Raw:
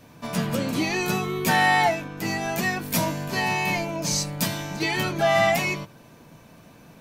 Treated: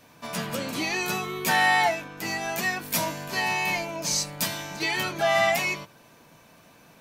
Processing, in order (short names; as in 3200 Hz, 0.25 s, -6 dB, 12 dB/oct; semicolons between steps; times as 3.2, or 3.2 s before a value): low shelf 410 Hz -10 dB